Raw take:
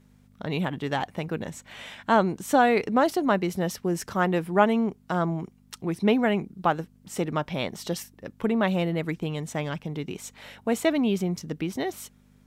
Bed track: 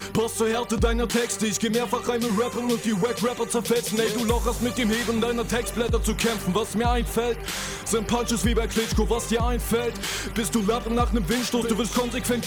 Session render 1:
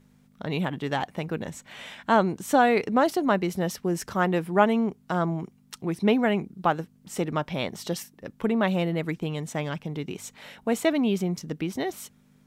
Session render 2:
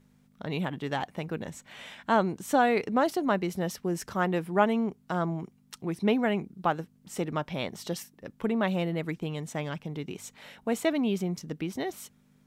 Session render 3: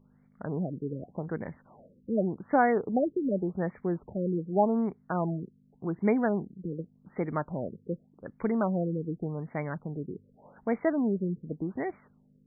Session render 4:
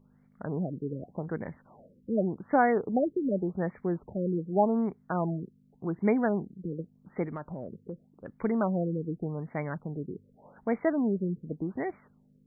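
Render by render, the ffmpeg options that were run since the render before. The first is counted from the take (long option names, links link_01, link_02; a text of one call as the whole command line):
ffmpeg -i in.wav -af "bandreject=frequency=50:width_type=h:width=4,bandreject=frequency=100:width_type=h:width=4" out.wav
ffmpeg -i in.wav -af "volume=-3.5dB" out.wav
ffmpeg -i in.wav -af "afftfilt=real='re*lt(b*sr/1024,510*pow(2400/510,0.5+0.5*sin(2*PI*0.86*pts/sr)))':imag='im*lt(b*sr/1024,510*pow(2400/510,0.5+0.5*sin(2*PI*0.86*pts/sr)))':win_size=1024:overlap=0.75" out.wav
ffmpeg -i in.wav -filter_complex "[0:a]asettb=1/sr,asplit=3[link_01][link_02][link_03];[link_01]atrim=end=7.274[link_04];[link_02]atrim=start=7.27:end=8.31,asetpts=PTS-STARTPTS,afade=type=in:duration=0.004:curve=qsin,afade=type=out:start_time=1.036:duration=0.004:curve=qsin,acompressor=threshold=-34dB:ratio=4:attack=3.2:release=140:knee=1:detection=peak[link_05];[link_03]atrim=start=8.306[link_06];[link_04][link_05]acrossfade=duration=0.004:curve1=hsin:curve2=qsin[link_07];[link_07][link_06]acrossfade=duration=0.004:curve1=qsin:curve2=hsin" out.wav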